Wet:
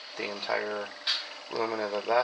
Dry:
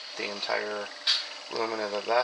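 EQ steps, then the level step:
low-pass filter 3,400 Hz 6 dB per octave
low-shelf EQ 88 Hz +8.5 dB
mains-hum notches 50/100/150/200 Hz
0.0 dB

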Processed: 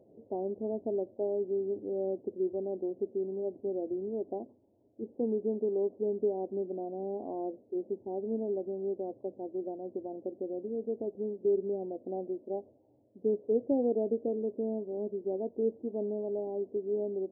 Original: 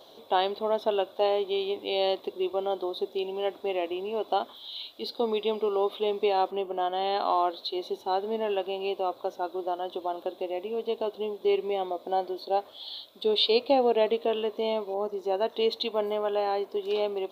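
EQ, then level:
Gaussian smoothing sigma 19 samples
high-pass filter 94 Hz
low-shelf EQ 230 Hz +9 dB
0.0 dB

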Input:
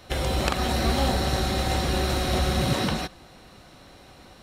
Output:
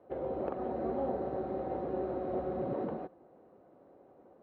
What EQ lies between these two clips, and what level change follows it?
four-pole ladder band-pass 570 Hz, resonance 30%
spectral tilt −4.5 dB per octave
0.0 dB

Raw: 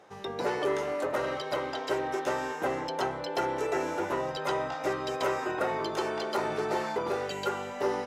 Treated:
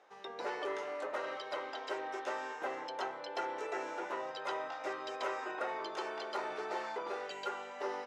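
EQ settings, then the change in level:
band-pass filter 280–7,700 Hz
low-shelf EQ 460 Hz −10 dB
high-shelf EQ 4,400 Hz −6 dB
−4.5 dB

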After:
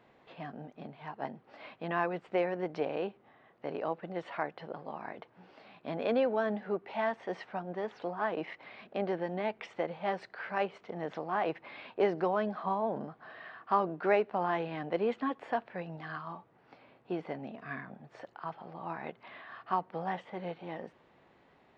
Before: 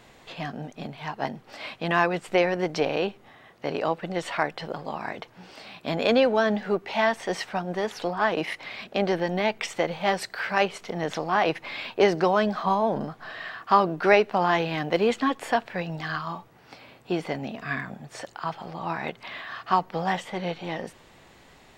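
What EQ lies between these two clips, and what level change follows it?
high-pass filter 220 Hz 6 dB per octave
head-to-tape spacing loss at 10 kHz 34 dB
−5.5 dB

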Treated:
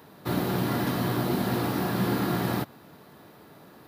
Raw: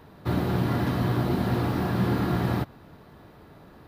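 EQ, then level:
high-pass filter 150 Hz 12 dB per octave
high-shelf EQ 5,700 Hz +11 dB
0.0 dB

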